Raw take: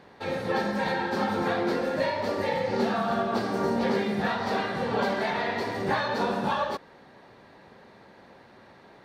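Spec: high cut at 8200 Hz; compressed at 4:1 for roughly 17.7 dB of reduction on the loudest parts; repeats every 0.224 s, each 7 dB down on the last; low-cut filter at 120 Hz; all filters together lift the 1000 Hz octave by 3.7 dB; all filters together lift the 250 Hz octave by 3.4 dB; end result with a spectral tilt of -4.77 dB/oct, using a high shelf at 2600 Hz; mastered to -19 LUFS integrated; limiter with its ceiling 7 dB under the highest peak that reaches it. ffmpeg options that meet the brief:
-af "highpass=120,lowpass=8.2k,equalizer=f=250:t=o:g=4.5,equalizer=f=1k:t=o:g=5.5,highshelf=f=2.6k:g=-8,acompressor=threshold=-42dB:ratio=4,alimiter=level_in=12dB:limit=-24dB:level=0:latency=1,volume=-12dB,aecho=1:1:224|448|672|896|1120:0.447|0.201|0.0905|0.0407|0.0183,volume=25.5dB"

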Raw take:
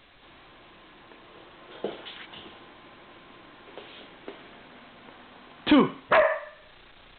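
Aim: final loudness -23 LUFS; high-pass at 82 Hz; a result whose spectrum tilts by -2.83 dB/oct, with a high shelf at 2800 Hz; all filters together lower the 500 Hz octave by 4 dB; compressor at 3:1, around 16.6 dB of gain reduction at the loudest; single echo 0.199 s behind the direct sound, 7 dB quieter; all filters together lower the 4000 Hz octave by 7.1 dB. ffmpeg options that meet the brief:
-af "highpass=82,equalizer=f=500:t=o:g=-5,highshelf=f=2.8k:g=-5.5,equalizer=f=4k:t=o:g=-5.5,acompressor=threshold=-40dB:ratio=3,aecho=1:1:199:0.447,volume=22.5dB"

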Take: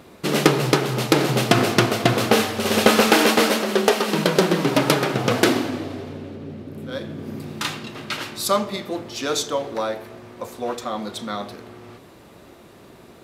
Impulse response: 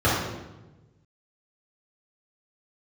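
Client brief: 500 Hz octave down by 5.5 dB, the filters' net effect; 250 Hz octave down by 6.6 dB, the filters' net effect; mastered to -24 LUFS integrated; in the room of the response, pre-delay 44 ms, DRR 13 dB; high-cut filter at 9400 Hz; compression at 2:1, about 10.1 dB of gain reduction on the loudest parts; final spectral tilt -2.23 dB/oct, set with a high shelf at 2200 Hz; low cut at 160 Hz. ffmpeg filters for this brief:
-filter_complex "[0:a]highpass=160,lowpass=9.4k,equalizer=f=250:t=o:g=-6,equalizer=f=500:t=o:g=-5.5,highshelf=f=2.2k:g=7.5,acompressor=threshold=-31dB:ratio=2,asplit=2[a][b];[1:a]atrim=start_sample=2205,adelay=44[c];[b][c]afir=irnorm=-1:irlink=0,volume=-32dB[d];[a][d]amix=inputs=2:normalize=0,volume=4.5dB"

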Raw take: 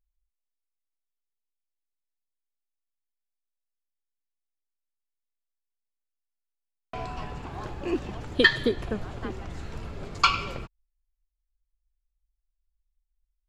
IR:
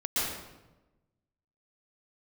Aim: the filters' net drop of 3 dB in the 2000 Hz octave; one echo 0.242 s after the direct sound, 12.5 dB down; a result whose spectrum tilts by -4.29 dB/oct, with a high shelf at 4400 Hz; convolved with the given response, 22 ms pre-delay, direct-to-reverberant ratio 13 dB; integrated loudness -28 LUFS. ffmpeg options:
-filter_complex "[0:a]equalizer=f=2k:t=o:g=-4,highshelf=f=4.4k:g=3.5,aecho=1:1:242:0.237,asplit=2[a][b];[1:a]atrim=start_sample=2205,adelay=22[c];[b][c]afir=irnorm=-1:irlink=0,volume=-22dB[d];[a][d]amix=inputs=2:normalize=0,volume=1dB"

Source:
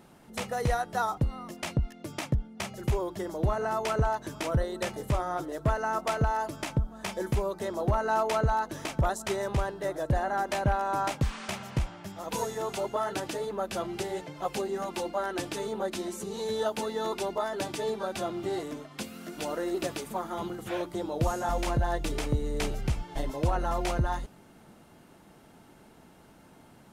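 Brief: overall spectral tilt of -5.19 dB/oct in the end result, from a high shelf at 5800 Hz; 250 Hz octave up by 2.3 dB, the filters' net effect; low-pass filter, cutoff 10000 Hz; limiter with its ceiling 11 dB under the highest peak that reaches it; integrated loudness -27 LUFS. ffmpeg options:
-af "lowpass=10k,equalizer=f=250:t=o:g=3.5,highshelf=f=5.8k:g=-5,volume=8.5dB,alimiter=limit=-17dB:level=0:latency=1"

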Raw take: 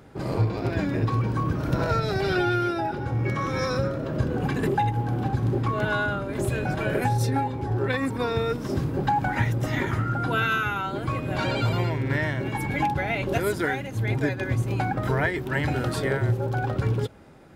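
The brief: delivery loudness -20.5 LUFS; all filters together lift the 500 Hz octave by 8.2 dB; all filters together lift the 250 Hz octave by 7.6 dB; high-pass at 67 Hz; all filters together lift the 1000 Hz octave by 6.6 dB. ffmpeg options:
-af "highpass=67,equalizer=f=250:t=o:g=7.5,equalizer=f=500:t=o:g=6.5,equalizer=f=1k:t=o:g=6"

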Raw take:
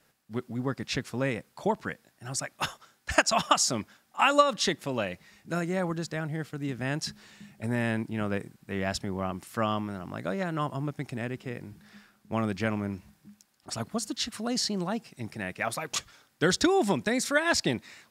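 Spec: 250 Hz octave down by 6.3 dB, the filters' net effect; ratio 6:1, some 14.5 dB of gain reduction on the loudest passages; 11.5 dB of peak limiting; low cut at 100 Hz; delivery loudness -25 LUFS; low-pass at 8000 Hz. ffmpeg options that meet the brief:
-af "highpass=100,lowpass=8k,equalizer=f=250:t=o:g=-8.5,acompressor=threshold=-32dB:ratio=6,volume=15dB,alimiter=limit=-11.5dB:level=0:latency=1"

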